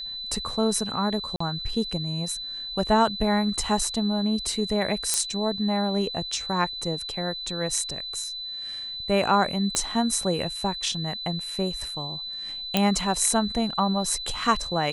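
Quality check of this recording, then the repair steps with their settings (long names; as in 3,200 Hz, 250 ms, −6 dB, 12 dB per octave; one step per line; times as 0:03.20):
whistle 4,000 Hz −32 dBFS
0:01.36–0:01.40: drop-out 44 ms
0:05.14: click −7 dBFS
0:09.75: click −10 dBFS
0:12.77: click −6 dBFS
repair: click removal
notch filter 4,000 Hz, Q 30
repair the gap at 0:01.36, 44 ms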